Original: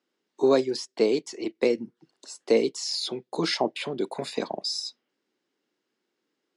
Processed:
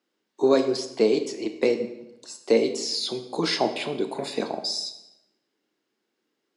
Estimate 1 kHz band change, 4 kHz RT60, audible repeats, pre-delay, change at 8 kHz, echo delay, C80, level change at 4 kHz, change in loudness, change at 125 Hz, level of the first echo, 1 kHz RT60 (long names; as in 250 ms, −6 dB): +2.0 dB, 0.75 s, no echo audible, 8 ms, +1.5 dB, no echo audible, 12.5 dB, +2.0 dB, +1.5 dB, +1.5 dB, no echo audible, 0.85 s